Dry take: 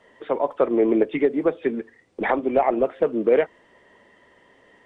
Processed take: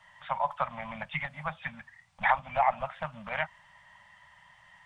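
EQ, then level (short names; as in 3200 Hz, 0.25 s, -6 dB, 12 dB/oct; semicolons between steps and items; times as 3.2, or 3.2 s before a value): elliptic band-stop 160–840 Hz, stop band 70 dB; bell 580 Hz +9 dB 0.26 oct; +1.0 dB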